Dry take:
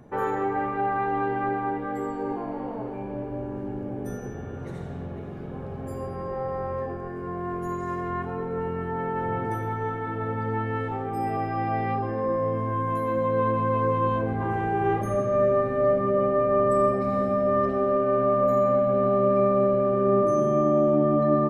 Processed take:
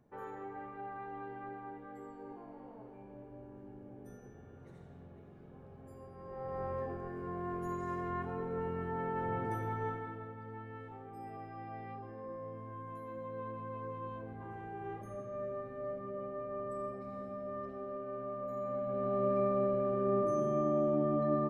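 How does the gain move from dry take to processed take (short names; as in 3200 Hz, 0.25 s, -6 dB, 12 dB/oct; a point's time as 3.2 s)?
6.14 s -18.5 dB
6.62 s -8 dB
9.89 s -8 dB
10.34 s -19 dB
18.48 s -19 dB
19.24 s -10 dB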